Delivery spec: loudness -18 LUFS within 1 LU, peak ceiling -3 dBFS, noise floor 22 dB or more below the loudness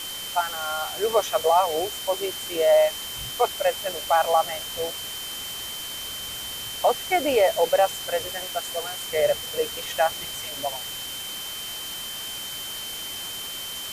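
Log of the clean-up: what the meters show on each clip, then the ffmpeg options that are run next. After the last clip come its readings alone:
steady tone 3.1 kHz; tone level -34 dBFS; noise floor -34 dBFS; noise floor target -48 dBFS; loudness -25.5 LUFS; peak level -8.5 dBFS; loudness target -18.0 LUFS
-> -af "bandreject=f=3100:w=30"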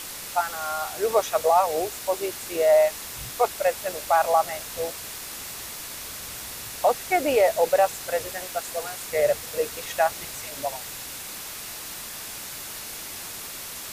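steady tone not found; noise floor -37 dBFS; noise floor target -48 dBFS
-> -af "afftdn=nr=11:nf=-37"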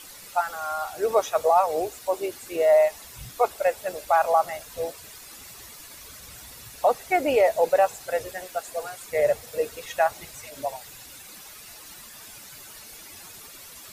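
noise floor -45 dBFS; noise floor target -47 dBFS
-> -af "afftdn=nr=6:nf=-45"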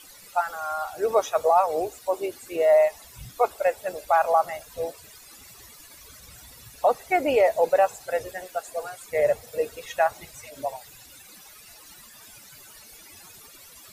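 noise floor -49 dBFS; loudness -25.0 LUFS; peak level -9.0 dBFS; loudness target -18.0 LUFS
-> -af "volume=2.24,alimiter=limit=0.708:level=0:latency=1"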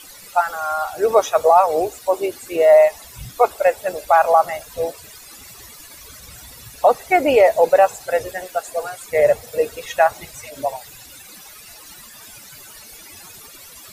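loudness -18.0 LUFS; peak level -3.0 dBFS; noise floor -42 dBFS

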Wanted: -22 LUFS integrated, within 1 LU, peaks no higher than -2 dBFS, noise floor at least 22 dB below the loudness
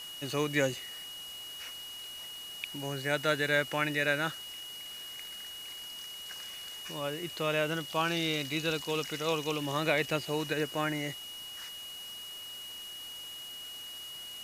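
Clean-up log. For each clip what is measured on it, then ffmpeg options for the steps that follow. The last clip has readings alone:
steady tone 2.9 kHz; tone level -42 dBFS; noise floor -44 dBFS; noise floor target -56 dBFS; loudness -34.0 LUFS; peak level -12.5 dBFS; loudness target -22.0 LUFS
-> -af "bandreject=f=2900:w=30"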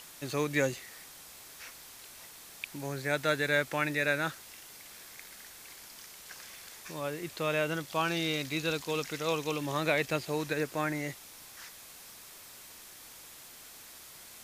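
steady tone not found; noise floor -51 dBFS; noise floor target -54 dBFS
-> -af "afftdn=nr=6:nf=-51"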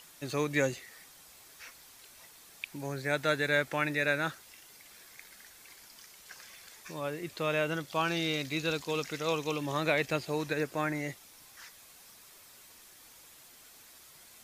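noise floor -56 dBFS; loudness -32.0 LUFS; peak level -13.0 dBFS; loudness target -22.0 LUFS
-> -af "volume=3.16"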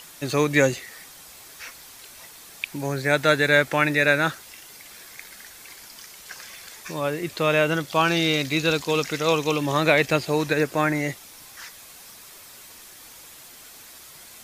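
loudness -22.0 LUFS; peak level -3.0 dBFS; noise floor -46 dBFS

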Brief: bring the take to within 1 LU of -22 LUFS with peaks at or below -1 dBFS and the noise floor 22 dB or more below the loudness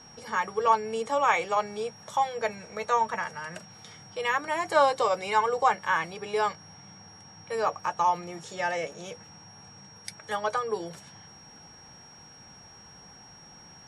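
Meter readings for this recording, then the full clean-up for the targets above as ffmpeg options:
steady tone 5.6 kHz; tone level -50 dBFS; loudness -28.0 LUFS; peak level -8.5 dBFS; loudness target -22.0 LUFS
-> -af "bandreject=f=5600:w=30"
-af "volume=2"

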